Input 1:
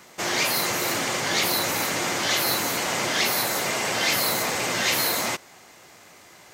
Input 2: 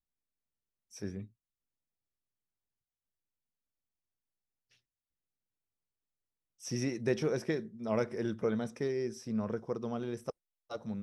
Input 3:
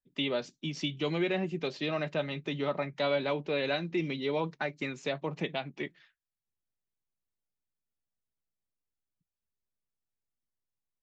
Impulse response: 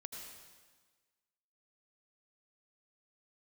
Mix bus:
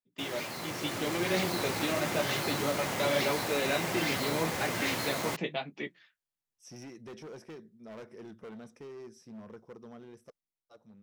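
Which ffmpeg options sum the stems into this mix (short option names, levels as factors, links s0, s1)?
-filter_complex "[0:a]aemphasis=mode=reproduction:type=bsi,acrusher=bits=4:mix=0:aa=0.000001,volume=0.188[s0];[1:a]asoftclip=type=hard:threshold=0.0251,volume=0.158[s1];[2:a]flanger=delay=9.3:depth=7.6:regen=-24:speed=0.85:shape=sinusoidal,volume=0.708[s2];[s0][s1][s2]amix=inputs=3:normalize=0,lowshelf=f=74:g=-9,dynaudnorm=f=150:g=13:m=2.11"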